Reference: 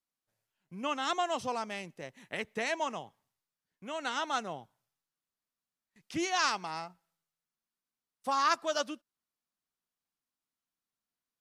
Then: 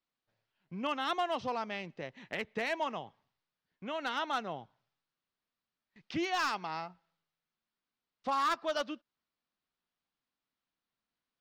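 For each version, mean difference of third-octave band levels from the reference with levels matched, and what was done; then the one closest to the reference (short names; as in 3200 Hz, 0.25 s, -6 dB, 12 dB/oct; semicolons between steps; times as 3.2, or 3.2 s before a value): 3.5 dB: LPF 4600 Hz 24 dB/oct; in parallel at +0.5 dB: compressor 20:1, threshold -42 dBFS, peak gain reduction 20 dB; on the sum: hard clip -22.5 dBFS, distortion -18 dB; gain -2.5 dB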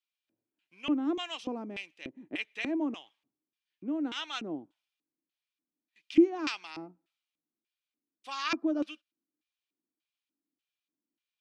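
10.0 dB: dynamic EQ 3500 Hz, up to -3 dB, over -48 dBFS, Q 1.3; LFO band-pass square 1.7 Hz 280–3100 Hz; small resonant body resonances 310/2400 Hz, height 12 dB, ringing for 45 ms; gain +7 dB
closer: first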